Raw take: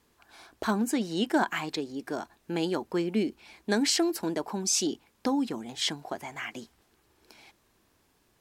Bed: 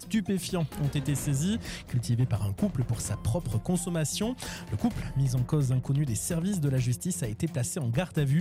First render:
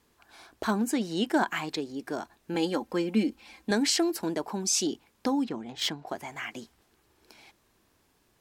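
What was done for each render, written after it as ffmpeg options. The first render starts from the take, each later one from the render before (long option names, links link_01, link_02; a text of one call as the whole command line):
ffmpeg -i in.wav -filter_complex "[0:a]asettb=1/sr,asplit=3[link_01][link_02][link_03];[link_01]atrim=end=2.544[link_04];[link_02]atrim=start=2.54:end=3.71,asetpts=PTS-STARTPTS,afade=type=in:duration=0.004:curve=qsin,afade=type=out:start_time=1.166:duration=0.004:curve=qsin,aecho=1:1:3.8:0.65,atrim=end_sample=51597[link_05];[link_03]atrim=start=3.706[link_06];[link_04][link_05]acrossfade=duration=0.004:curve1=hsin:curve2=qsin[link_07];[link_07][link_06]acrossfade=duration=0.004:curve1=qsin:curve2=hsin,asettb=1/sr,asplit=3[link_08][link_09][link_10];[link_08]atrim=end=5.444[link_11];[link_09]atrim=start=5.44:end=6.07,asetpts=PTS-STARTPTS,afade=type=in:duration=0.004:curve=qsin,afade=type=out:start_time=0.626:duration=0.004:curve=qsin,adynamicsmooth=sensitivity=5:basefreq=4100[link_12];[link_10]atrim=start=6.066[link_13];[link_11][link_12]acrossfade=duration=0.004:curve1=hsin:curve2=qsin[link_14];[link_14][link_13]acrossfade=duration=0.004:curve1=qsin:curve2=hsin" out.wav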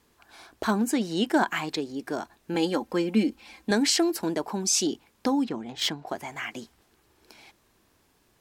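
ffmpeg -i in.wav -af "volume=2.5dB" out.wav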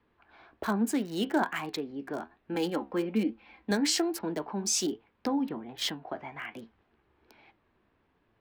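ffmpeg -i in.wav -filter_complex "[0:a]flanger=delay=8.6:depth=6.8:regen=68:speed=1.2:shape=triangular,acrossover=split=330|520|3100[link_01][link_02][link_03][link_04];[link_04]aeval=exprs='val(0)*gte(abs(val(0)),0.00794)':channel_layout=same[link_05];[link_01][link_02][link_03][link_05]amix=inputs=4:normalize=0" out.wav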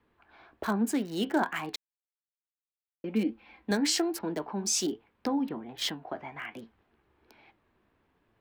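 ffmpeg -i in.wav -filter_complex "[0:a]asplit=3[link_01][link_02][link_03];[link_01]atrim=end=1.76,asetpts=PTS-STARTPTS,afade=type=out:start_time=1.756:duration=0.004:curve=hsin[link_04];[link_02]atrim=start=1.76:end=3.04,asetpts=PTS-STARTPTS,volume=0[link_05];[link_03]atrim=start=3.04,asetpts=PTS-STARTPTS,afade=type=in:duration=0.004:curve=hsin[link_06];[link_04][link_05][link_06]concat=n=3:v=0:a=1" out.wav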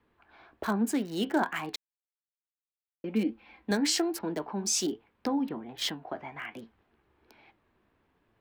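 ffmpeg -i in.wav -af anull out.wav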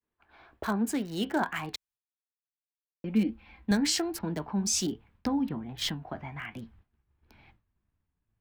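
ffmpeg -i in.wav -af "agate=range=-33dB:threshold=-59dB:ratio=3:detection=peak,asubboost=boost=8:cutoff=140" out.wav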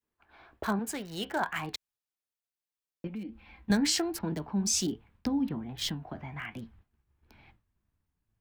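ffmpeg -i in.wav -filter_complex "[0:a]asettb=1/sr,asplit=3[link_01][link_02][link_03];[link_01]atrim=end=0.794[link_04];[link_02]atrim=start=0.79:end=1.56,asetpts=PTS-STARTPTS,afade=type=in:duration=0.004:curve=qsin,afade=type=out:start_time=0.766:duration=0.004:curve=qsin,equalizer=frequency=260:width=1.5:gain=-10.5[link_05];[link_03]atrim=start=1.556[link_06];[link_04][link_05]acrossfade=duration=0.004:curve1=hsin:curve2=qsin[link_07];[link_07][link_06]acrossfade=duration=0.004:curve1=qsin:curve2=hsin,asettb=1/sr,asplit=3[link_08][link_09][link_10];[link_08]atrim=end=3.074[link_11];[link_09]atrim=start=3.07:end=3.7,asetpts=PTS-STARTPTS,afade=type=in:duration=0.004:curve=qsin,afade=type=out:start_time=0.626:duration=0.004:curve=qsin,acompressor=threshold=-40dB:ratio=3:attack=3.2:release=140:knee=1:detection=peak[link_12];[link_10]atrim=start=3.696[link_13];[link_11][link_12]acrossfade=duration=0.004:curve1=hsin:curve2=qsin[link_14];[link_14][link_13]acrossfade=duration=0.004:curve1=qsin:curve2=hsin,asettb=1/sr,asplit=3[link_15][link_16][link_17];[link_15]atrim=end=4.324[link_18];[link_16]atrim=start=4.32:end=6.34,asetpts=PTS-STARTPTS,afade=type=in:duration=0.004:curve=qsin,afade=type=out:start_time=2.016:duration=0.004:curve=qsin,acrossover=split=470|3000[link_19][link_20][link_21];[link_20]acompressor=threshold=-44dB:ratio=3:attack=3.2:release=140:knee=2.83:detection=peak[link_22];[link_19][link_22][link_21]amix=inputs=3:normalize=0[link_23];[link_17]atrim=start=6.336[link_24];[link_18][link_23]acrossfade=duration=0.004:curve1=hsin:curve2=qsin[link_25];[link_25][link_24]acrossfade=duration=0.004:curve1=qsin:curve2=hsin" out.wav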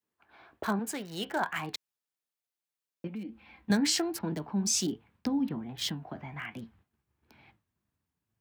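ffmpeg -i in.wav -af "highpass=110" out.wav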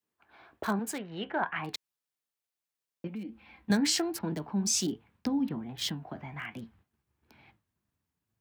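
ffmpeg -i in.wav -filter_complex "[0:a]asettb=1/sr,asplit=3[link_01][link_02][link_03];[link_01]atrim=end=0.984[link_04];[link_02]atrim=start=0.98:end=1.64,asetpts=PTS-STARTPTS,afade=type=in:duration=0.004:curve=qsin,afade=type=out:start_time=0.656:duration=0.004:curve=qsin,lowpass=frequency=2900:width=0.5412,lowpass=frequency=2900:width=1.3066[link_05];[link_03]atrim=start=1.636[link_06];[link_04][link_05]acrossfade=duration=0.004:curve1=hsin:curve2=qsin[link_07];[link_07][link_06]acrossfade=duration=0.004:curve1=qsin:curve2=hsin" out.wav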